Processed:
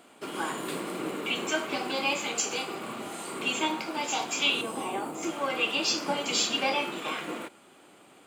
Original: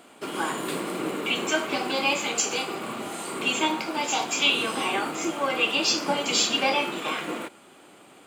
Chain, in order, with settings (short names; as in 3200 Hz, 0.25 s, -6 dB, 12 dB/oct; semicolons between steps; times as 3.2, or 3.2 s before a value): 4.61–5.23 band shelf 2800 Hz -9 dB 2.5 oct; gain -4 dB